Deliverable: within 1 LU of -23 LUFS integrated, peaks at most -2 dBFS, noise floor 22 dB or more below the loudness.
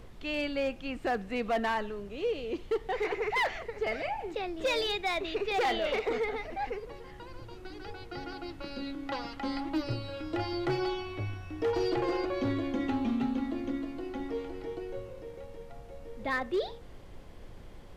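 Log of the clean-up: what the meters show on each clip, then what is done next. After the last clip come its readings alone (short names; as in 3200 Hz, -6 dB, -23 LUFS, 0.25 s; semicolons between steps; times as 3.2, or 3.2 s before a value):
clipped 0.9%; flat tops at -24.0 dBFS; noise floor -48 dBFS; noise floor target -55 dBFS; loudness -33.0 LUFS; peak -24.0 dBFS; loudness target -23.0 LUFS
-> clip repair -24 dBFS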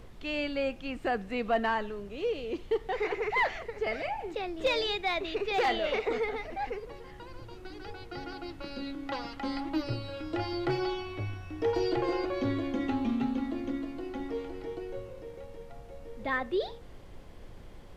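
clipped 0.0%; noise floor -48 dBFS; noise floor target -55 dBFS
-> noise print and reduce 7 dB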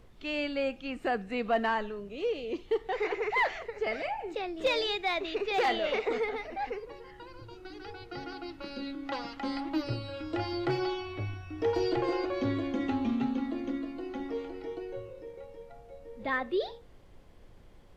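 noise floor -53 dBFS; noise floor target -55 dBFS
-> noise print and reduce 6 dB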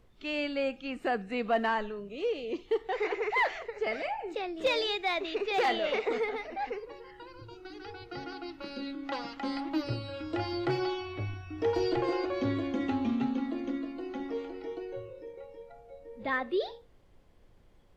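noise floor -59 dBFS; loudness -32.5 LUFS; peak -16.0 dBFS; loudness target -23.0 LUFS
-> gain +9.5 dB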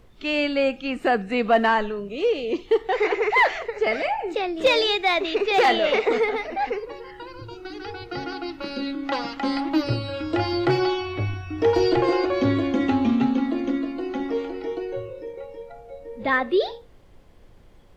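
loudness -23.0 LUFS; peak -6.5 dBFS; noise floor -49 dBFS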